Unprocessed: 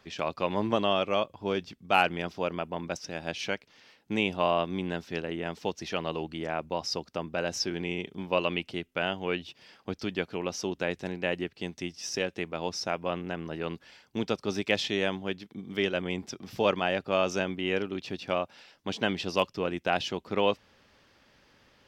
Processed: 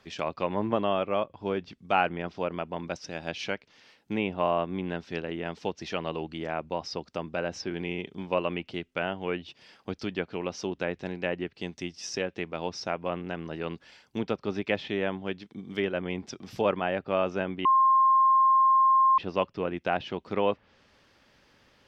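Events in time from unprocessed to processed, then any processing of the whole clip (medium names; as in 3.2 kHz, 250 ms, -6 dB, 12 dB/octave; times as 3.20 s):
17.65–19.18 s: bleep 1.06 kHz -17 dBFS
whole clip: low-pass that closes with the level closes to 2.1 kHz, closed at -25.5 dBFS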